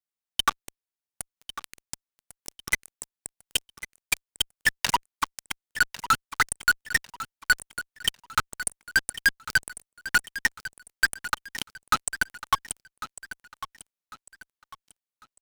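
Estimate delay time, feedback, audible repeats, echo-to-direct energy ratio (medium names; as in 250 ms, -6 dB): 1099 ms, 34%, 3, -13.5 dB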